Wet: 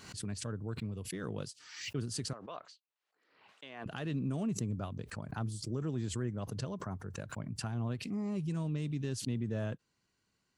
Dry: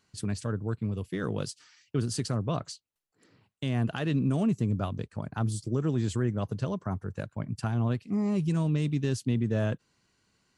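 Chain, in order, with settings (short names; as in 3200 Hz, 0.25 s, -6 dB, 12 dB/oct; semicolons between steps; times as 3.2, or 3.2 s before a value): 2.33–3.86 BPF 630–3600 Hz; backwards sustainer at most 71 dB/s; gain -8.5 dB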